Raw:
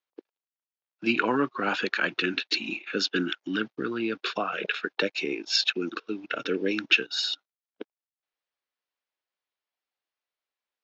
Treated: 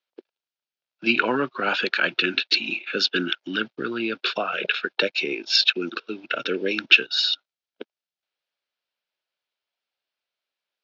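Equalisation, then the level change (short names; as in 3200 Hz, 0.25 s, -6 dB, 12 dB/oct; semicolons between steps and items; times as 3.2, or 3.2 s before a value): speaker cabinet 170–5200 Hz, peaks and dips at 200 Hz -6 dB, 300 Hz -9 dB, 450 Hz -5 dB, 790 Hz -5 dB, 1100 Hz -8 dB, 1900 Hz -6 dB; +7.5 dB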